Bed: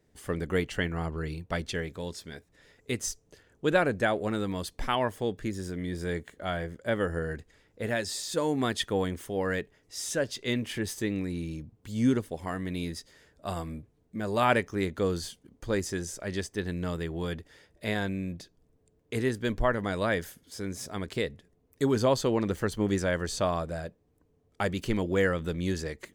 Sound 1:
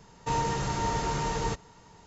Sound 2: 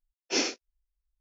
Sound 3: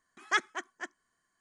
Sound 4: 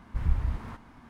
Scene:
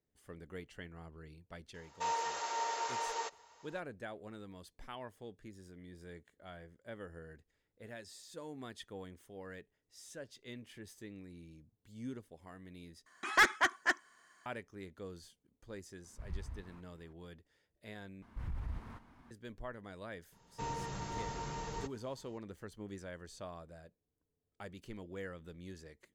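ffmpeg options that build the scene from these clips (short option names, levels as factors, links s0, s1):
-filter_complex "[1:a]asplit=2[s0][s1];[4:a]asplit=2[s2][s3];[0:a]volume=0.112[s4];[s0]highpass=f=500:w=0.5412,highpass=f=500:w=1.3066[s5];[3:a]asplit=2[s6][s7];[s7]highpass=f=720:p=1,volume=15.8,asoftclip=type=tanh:threshold=0.188[s8];[s6][s8]amix=inputs=2:normalize=0,lowpass=f=4500:p=1,volume=0.501[s9];[s3]alimiter=limit=0.0668:level=0:latency=1:release=23[s10];[s4]asplit=3[s11][s12][s13];[s11]atrim=end=13.064[s14];[s9]atrim=end=1.4,asetpts=PTS-STARTPTS,volume=0.75[s15];[s12]atrim=start=14.456:end=18.224[s16];[s10]atrim=end=1.09,asetpts=PTS-STARTPTS,volume=0.355[s17];[s13]atrim=start=19.306[s18];[s5]atrim=end=2.06,asetpts=PTS-STARTPTS,volume=0.531,afade=t=in:d=0.004:c=hsin,afade=t=out:st=2.056:d=0.004:c=hsin,adelay=1740[s19];[s2]atrim=end=1.09,asetpts=PTS-STARTPTS,volume=0.15,afade=t=in:d=0.004:c=hsin,afade=t=out:st=1.086:d=0.004:c=hsin,adelay=707364S[s20];[s1]atrim=end=2.06,asetpts=PTS-STARTPTS,volume=0.251,afade=t=in:d=0.004:c=hsin,afade=t=out:st=2.056:d=0.004:c=hsin,adelay=20320[s21];[s14][s15]acrossfade=d=0.004:c1=hsin:c2=hsin[s22];[s22][s16]acrossfade=d=0.004:c1=hsin:c2=hsin[s23];[s23][s17]acrossfade=d=0.004:c1=hsin:c2=hsin[s24];[s24][s18]acrossfade=d=0.004:c1=hsin:c2=hsin[s25];[s25][s19][s20][s21]amix=inputs=4:normalize=0"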